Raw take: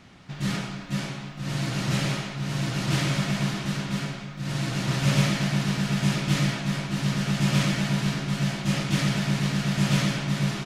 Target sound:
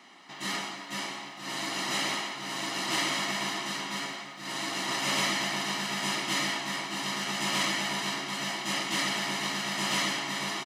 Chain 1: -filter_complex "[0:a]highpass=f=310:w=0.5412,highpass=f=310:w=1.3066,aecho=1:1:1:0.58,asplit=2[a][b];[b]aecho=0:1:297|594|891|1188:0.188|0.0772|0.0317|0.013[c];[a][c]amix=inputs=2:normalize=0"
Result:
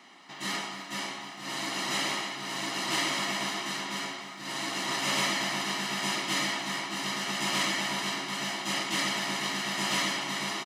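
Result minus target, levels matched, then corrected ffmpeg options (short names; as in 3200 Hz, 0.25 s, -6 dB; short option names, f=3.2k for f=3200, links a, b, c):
echo 0.131 s late
-filter_complex "[0:a]highpass=f=310:w=0.5412,highpass=f=310:w=1.3066,aecho=1:1:1:0.58,asplit=2[a][b];[b]aecho=0:1:166|332|498|664:0.188|0.0772|0.0317|0.013[c];[a][c]amix=inputs=2:normalize=0"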